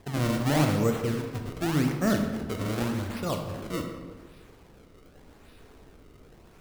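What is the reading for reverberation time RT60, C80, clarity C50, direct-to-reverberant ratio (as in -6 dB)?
1.4 s, 7.0 dB, 5.5 dB, 3.5 dB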